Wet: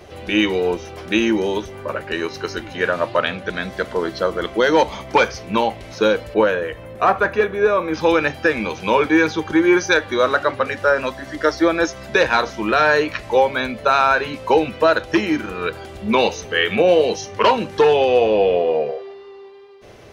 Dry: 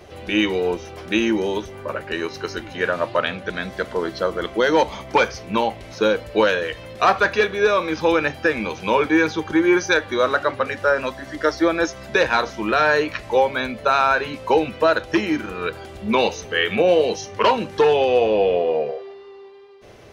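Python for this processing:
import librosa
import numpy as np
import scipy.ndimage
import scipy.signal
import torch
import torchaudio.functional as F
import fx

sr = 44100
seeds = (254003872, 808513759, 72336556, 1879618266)

y = fx.peak_eq(x, sr, hz=4700.0, db=-14.0, octaves=1.7, at=(6.34, 7.94))
y = F.gain(torch.from_numpy(y), 2.0).numpy()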